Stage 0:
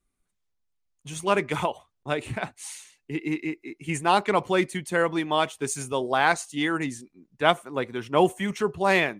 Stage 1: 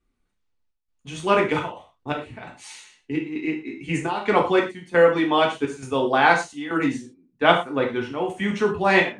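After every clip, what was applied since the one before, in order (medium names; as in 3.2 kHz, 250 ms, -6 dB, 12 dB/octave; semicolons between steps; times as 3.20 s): Bessel low-pass 4.1 kHz, order 2; trance gate "xxxx.xxxx.xx.." 85 bpm -12 dB; gated-style reverb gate 140 ms falling, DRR -0.5 dB; trim +2 dB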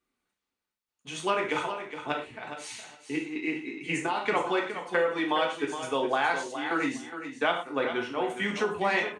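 high-pass 490 Hz 6 dB/octave; compression 4:1, threshold -24 dBFS, peak gain reduction 11 dB; feedback delay 415 ms, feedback 16%, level -10 dB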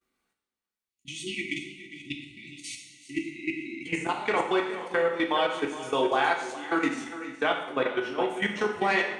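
level held to a coarse grid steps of 14 dB; spectral selection erased 0.89–3.86 s, 380–1900 Hz; two-slope reverb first 0.84 s, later 2.1 s, DRR 3.5 dB; trim +3 dB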